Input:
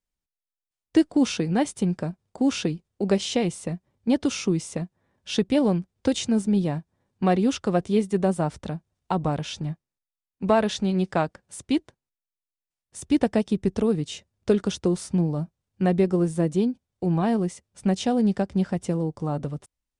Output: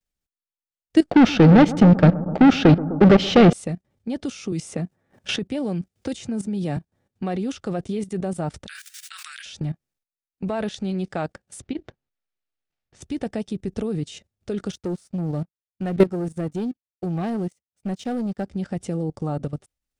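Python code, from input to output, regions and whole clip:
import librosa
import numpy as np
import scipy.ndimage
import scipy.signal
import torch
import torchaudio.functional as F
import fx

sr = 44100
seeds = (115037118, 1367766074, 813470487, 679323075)

y = fx.chain(x, sr, fx.leveller(passes=5),
    fx.air_absorb(metres=230.0),
    fx.echo_bbd(ms=127, stages=1024, feedback_pct=67, wet_db=-11), at=(1.1, 3.53))
y = fx.chain(y, sr, fx.highpass(hz=50.0, slope=12),
    fx.peak_eq(hz=3800.0, db=-2.5, octaves=0.76),
    fx.band_squash(depth_pct=70), at=(4.52, 6.77))
y = fx.chain(y, sr, fx.steep_highpass(hz=1500.0, slope=48),
    fx.high_shelf(hz=4200.0, db=7.5),
    fx.env_flatten(amount_pct=100), at=(8.67, 9.46))
y = fx.chain(y, sr, fx.over_compress(threshold_db=-28.0, ratio=-1.0),
    fx.air_absorb(metres=180.0), at=(11.61, 13.02))
y = fx.chain(y, sr, fx.leveller(passes=2),
    fx.upward_expand(threshold_db=-30.0, expansion=2.5), at=(14.72, 18.45))
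y = fx.notch(y, sr, hz=1000.0, q=5.8)
y = fx.level_steps(y, sr, step_db=15)
y = y * 10.0 ** (5.0 / 20.0)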